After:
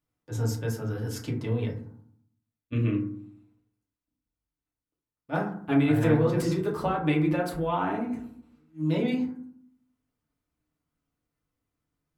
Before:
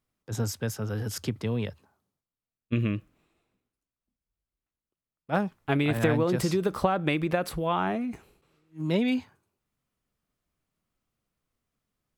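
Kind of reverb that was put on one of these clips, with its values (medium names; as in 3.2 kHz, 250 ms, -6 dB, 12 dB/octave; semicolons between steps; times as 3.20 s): FDN reverb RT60 0.59 s, low-frequency decay 1.5×, high-frequency decay 0.35×, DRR -3 dB; trim -6.5 dB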